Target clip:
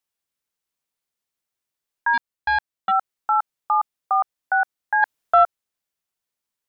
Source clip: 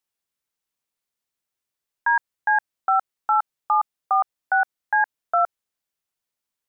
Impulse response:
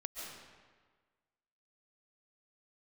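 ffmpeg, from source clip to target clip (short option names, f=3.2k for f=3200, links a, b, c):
-filter_complex "[0:a]asplit=3[a][b][c];[a]afade=t=out:st=2.13:d=0.02[d];[b]aeval=exprs='0.266*(cos(1*acos(clip(val(0)/0.266,-1,1)))-cos(1*PI/2))+0.0376*(cos(3*acos(clip(val(0)/0.266,-1,1)))-cos(3*PI/2))':c=same,afade=t=in:st=2.13:d=0.02,afade=t=out:st=2.9:d=0.02[e];[c]afade=t=in:st=2.9:d=0.02[f];[d][e][f]amix=inputs=3:normalize=0,asplit=3[g][h][i];[g]afade=t=out:st=5.02:d=0.02[j];[h]acontrast=58,afade=t=in:st=5.02:d=0.02,afade=t=out:st=5.43:d=0.02[k];[i]afade=t=in:st=5.43:d=0.02[l];[j][k][l]amix=inputs=3:normalize=0"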